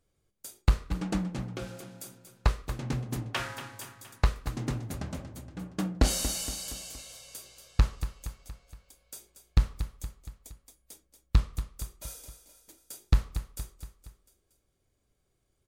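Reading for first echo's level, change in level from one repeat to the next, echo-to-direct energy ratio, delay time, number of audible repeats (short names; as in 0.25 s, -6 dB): -11.0 dB, -5.5 dB, -9.5 dB, 0.234 s, 4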